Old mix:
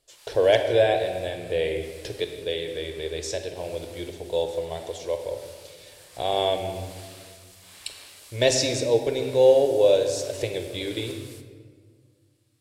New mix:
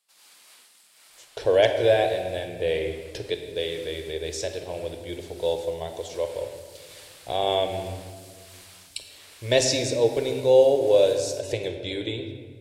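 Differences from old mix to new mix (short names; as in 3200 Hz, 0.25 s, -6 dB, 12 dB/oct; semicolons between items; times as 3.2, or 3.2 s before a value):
speech: entry +1.10 s; background: send -9.5 dB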